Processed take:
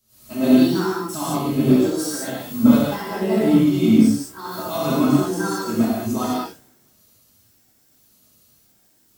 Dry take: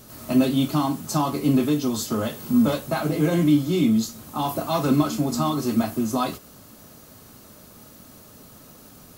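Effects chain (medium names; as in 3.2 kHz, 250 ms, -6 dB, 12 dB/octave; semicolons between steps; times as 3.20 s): pitch shift switched off and on +4 st, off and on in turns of 567 ms; gated-style reverb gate 240 ms flat, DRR -7 dB; three bands expanded up and down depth 70%; trim -5.5 dB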